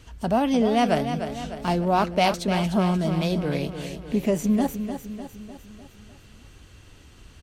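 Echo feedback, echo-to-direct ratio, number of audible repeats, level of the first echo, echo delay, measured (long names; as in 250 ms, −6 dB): 53%, −7.5 dB, 5, −9.0 dB, 301 ms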